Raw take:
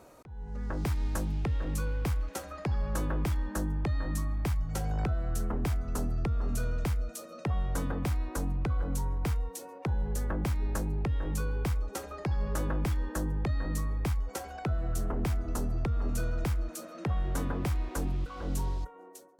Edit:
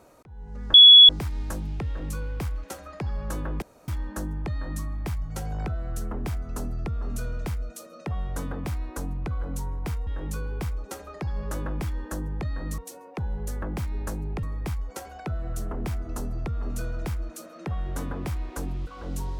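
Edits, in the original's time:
0.74 s: add tone 3.38 kHz -6.5 dBFS 0.35 s
3.27 s: insert room tone 0.26 s
9.46–11.11 s: move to 13.82 s

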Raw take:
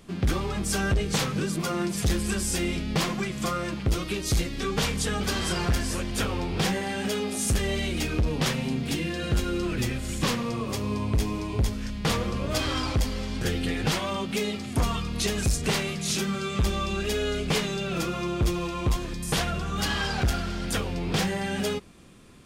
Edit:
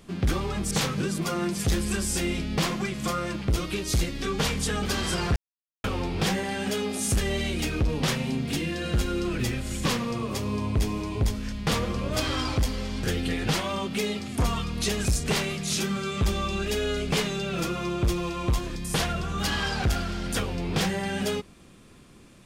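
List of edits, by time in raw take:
0.71–1.09 s: delete
5.74–6.22 s: mute

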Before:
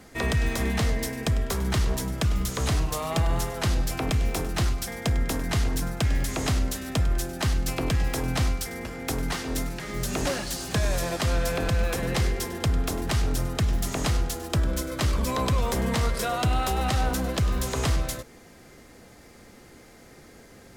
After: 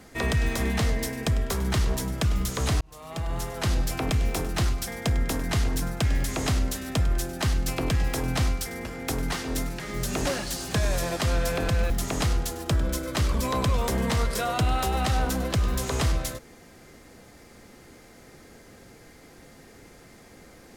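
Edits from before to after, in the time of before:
2.81–3.74 s: fade in
11.90–13.74 s: delete

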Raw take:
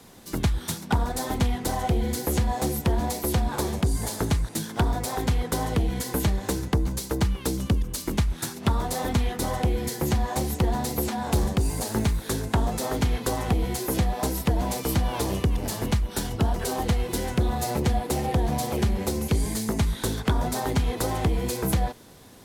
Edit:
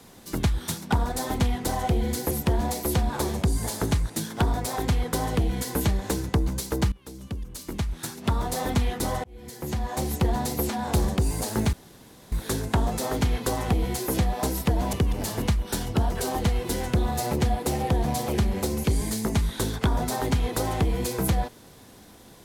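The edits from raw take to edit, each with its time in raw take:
2.31–2.70 s: delete
7.31–8.97 s: fade in, from -21.5 dB
9.63–10.55 s: fade in
12.12 s: insert room tone 0.59 s
14.73–15.37 s: delete

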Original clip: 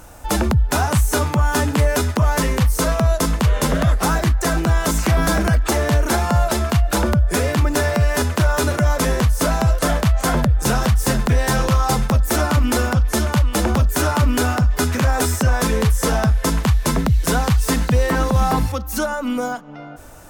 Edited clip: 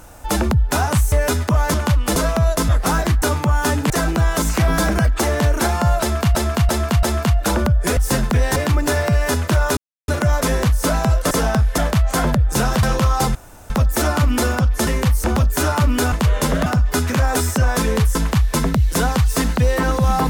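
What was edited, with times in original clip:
1.12–1.80 s: move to 4.39 s
2.42–2.79 s: swap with 13.21–13.63 s
3.32–3.86 s: move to 14.51 s
6.50–6.84 s: loop, 4 plays
8.65 s: insert silence 0.31 s
10.93–11.52 s: move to 7.44 s
12.04 s: insert room tone 0.35 s
16.00–16.47 s: move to 9.88 s

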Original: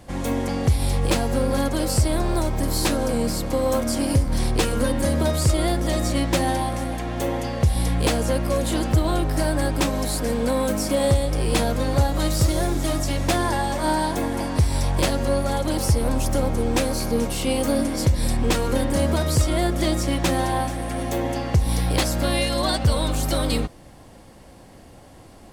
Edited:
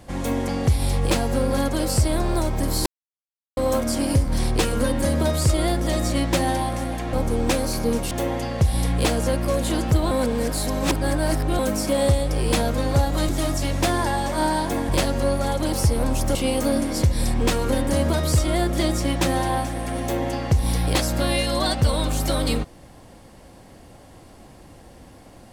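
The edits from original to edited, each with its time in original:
2.86–3.57 s: mute
9.13–10.61 s: reverse
12.31–12.75 s: delete
14.35–14.94 s: delete
16.40–17.38 s: move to 7.13 s

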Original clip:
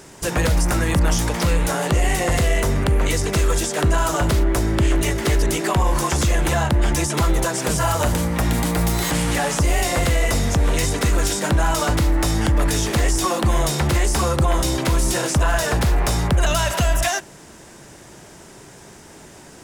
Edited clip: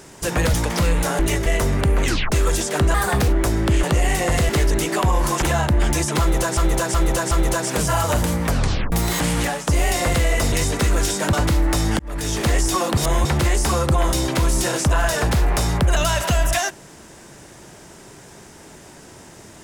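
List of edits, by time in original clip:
0.54–1.18 s: delete
1.83–2.49 s: swap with 4.94–5.21 s
3.07 s: tape stop 0.28 s
3.97–4.39 s: speed 123%
6.14–6.44 s: delete
7.22–7.59 s: loop, 4 plays
8.36 s: tape stop 0.47 s
9.33–9.58 s: fade out, to -14 dB
10.43–10.74 s: delete
11.55–11.83 s: delete
12.49–12.91 s: fade in
13.47–13.75 s: reverse

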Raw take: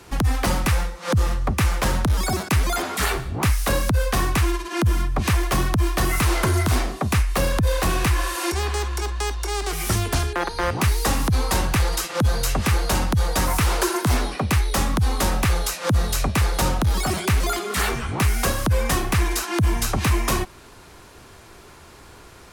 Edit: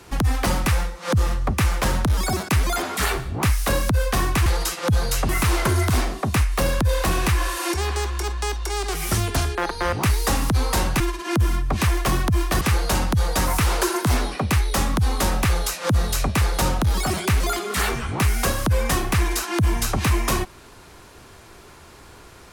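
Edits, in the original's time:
4.46–6.07 s: swap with 11.78–12.61 s

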